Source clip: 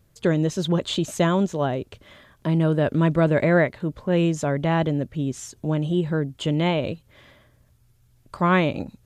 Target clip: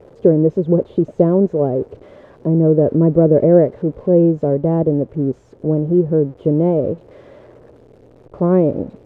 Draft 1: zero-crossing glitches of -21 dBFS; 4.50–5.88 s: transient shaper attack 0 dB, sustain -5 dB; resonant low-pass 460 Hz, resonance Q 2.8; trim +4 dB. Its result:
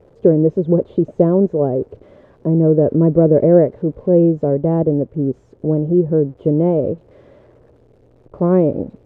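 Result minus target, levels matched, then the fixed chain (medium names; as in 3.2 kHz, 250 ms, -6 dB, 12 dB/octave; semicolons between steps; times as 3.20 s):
zero-crossing glitches: distortion -6 dB
zero-crossing glitches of -14.5 dBFS; 4.50–5.88 s: transient shaper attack 0 dB, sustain -5 dB; resonant low-pass 460 Hz, resonance Q 2.8; trim +4 dB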